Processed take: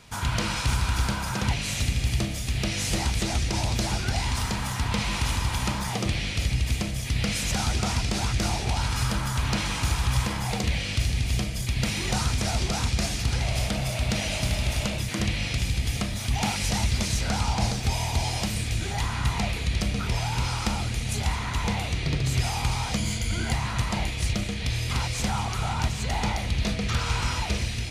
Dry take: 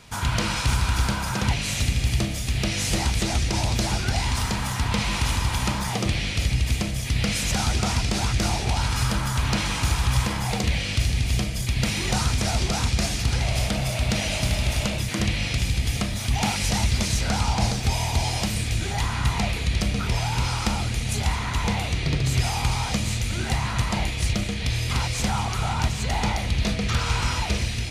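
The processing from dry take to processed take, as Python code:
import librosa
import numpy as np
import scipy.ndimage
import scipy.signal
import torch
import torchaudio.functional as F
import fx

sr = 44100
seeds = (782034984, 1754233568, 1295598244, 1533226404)

y = fx.ripple_eq(x, sr, per_octave=1.8, db=9, at=(22.97, 23.53))
y = y * librosa.db_to_amplitude(-2.5)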